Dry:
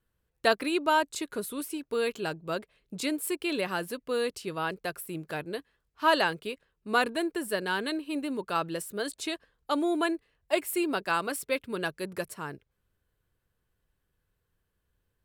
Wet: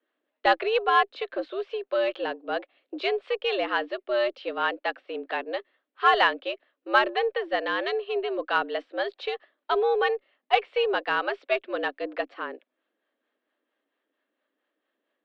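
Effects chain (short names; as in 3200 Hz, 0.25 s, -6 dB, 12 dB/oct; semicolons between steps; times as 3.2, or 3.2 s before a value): mistuned SSB +120 Hz 170–3600 Hz; added harmonics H 4 -35 dB, 8 -44 dB, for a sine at -10 dBFS; harmonic tremolo 4.4 Hz, depth 50%, crossover 510 Hz; gain +6.5 dB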